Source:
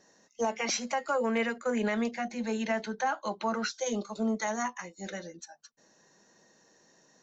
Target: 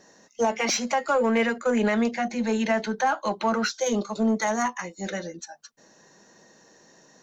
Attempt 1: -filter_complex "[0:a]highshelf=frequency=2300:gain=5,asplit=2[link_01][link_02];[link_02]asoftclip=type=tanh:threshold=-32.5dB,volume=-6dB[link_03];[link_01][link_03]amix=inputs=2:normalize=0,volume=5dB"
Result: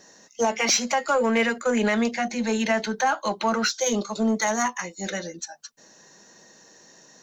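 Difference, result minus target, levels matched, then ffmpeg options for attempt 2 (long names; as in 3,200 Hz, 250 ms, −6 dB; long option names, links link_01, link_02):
4,000 Hz band +3.5 dB
-filter_complex "[0:a]highshelf=frequency=2300:gain=-2,asplit=2[link_01][link_02];[link_02]asoftclip=type=tanh:threshold=-32.5dB,volume=-6dB[link_03];[link_01][link_03]amix=inputs=2:normalize=0,volume=5dB"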